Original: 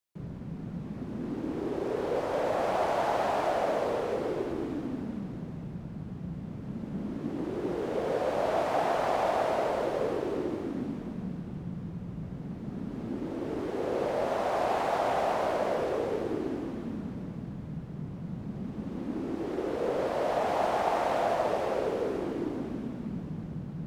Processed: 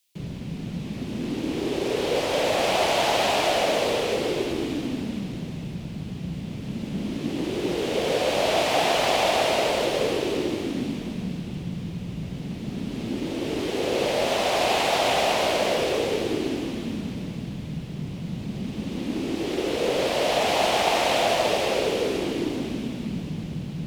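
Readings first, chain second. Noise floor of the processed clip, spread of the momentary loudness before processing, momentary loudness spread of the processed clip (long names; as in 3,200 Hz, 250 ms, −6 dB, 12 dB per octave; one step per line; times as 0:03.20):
−35 dBFS, 11 LU, 12 LU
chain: high shelf with overshoot 2,000 Hz +11 dB, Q 1.5
level +6 dB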